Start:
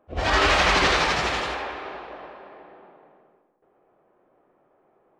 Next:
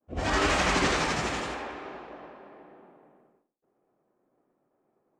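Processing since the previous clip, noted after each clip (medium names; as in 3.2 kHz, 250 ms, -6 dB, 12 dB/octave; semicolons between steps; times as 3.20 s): expander -57 dBFS; ten-band graphic EQ 125 Hz +5 dB, 250 Hz +8 dB, 4 kHz -4 dB, 8 kHz +9 dB; trim -6.5 dB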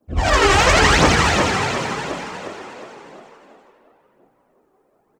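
phaser 0.95 Hz, delay 2.7 ms, feedback 69%; frequency-shifting echo 360 ms, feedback 47%, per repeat +37 Hz, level -5 dB; trim +8 dB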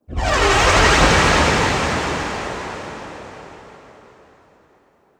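plate-style reverb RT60 4.3 s, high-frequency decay 0.85×, DRR -0.5 dB; trim -2.5 dB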